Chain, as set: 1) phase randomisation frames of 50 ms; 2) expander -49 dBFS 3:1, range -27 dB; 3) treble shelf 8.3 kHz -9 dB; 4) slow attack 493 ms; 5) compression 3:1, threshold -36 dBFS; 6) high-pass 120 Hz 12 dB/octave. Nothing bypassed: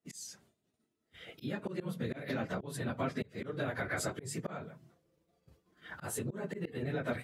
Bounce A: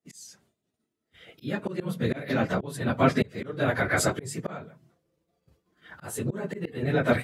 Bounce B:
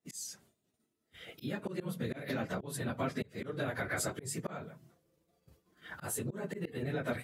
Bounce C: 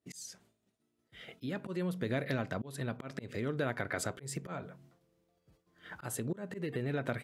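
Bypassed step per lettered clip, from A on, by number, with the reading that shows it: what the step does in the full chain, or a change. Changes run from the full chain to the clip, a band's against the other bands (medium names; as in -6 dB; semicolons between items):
5, mean gain reduction 7.0 dB; 3, 8 kHz band +3.0 dB; 1, 125 Hz band +1.5 dB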